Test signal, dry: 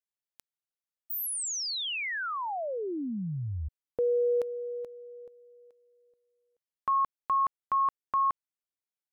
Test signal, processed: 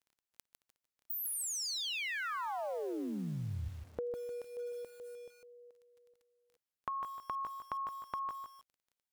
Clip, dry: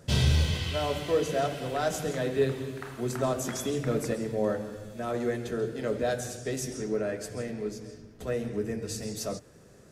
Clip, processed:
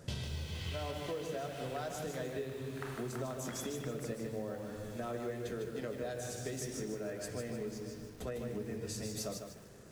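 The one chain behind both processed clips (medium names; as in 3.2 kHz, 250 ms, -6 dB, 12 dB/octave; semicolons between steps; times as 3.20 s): compression 12:1, threshold -36 dBFS; crackle 14 per s -55 dBFS; bit-crushed delay 152 ms, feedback 35%, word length 9-bit, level -5.5 dB; trim -1 dB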